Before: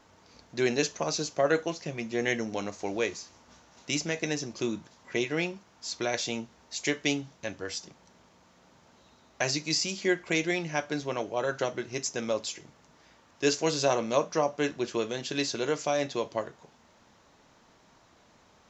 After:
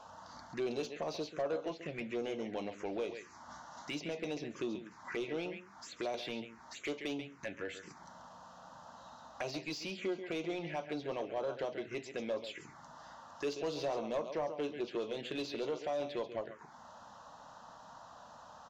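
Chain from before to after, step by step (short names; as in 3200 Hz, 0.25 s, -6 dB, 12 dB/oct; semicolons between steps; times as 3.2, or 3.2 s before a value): dynamic EQ 5200 Hz, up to -5 dB, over -48 dBFS, Q 3; compressor 2:1, threshold -49 dBFS, peak gain reduction 16 dB; echo 0.137 s -12 dB; envelope phaser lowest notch 310 Hz, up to 1800 Hz, full sweep at -38 dBFS; overdrive pedal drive 18 dB, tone 1500 Hz, clips at -26.5 dBFS; gain +1.5 dB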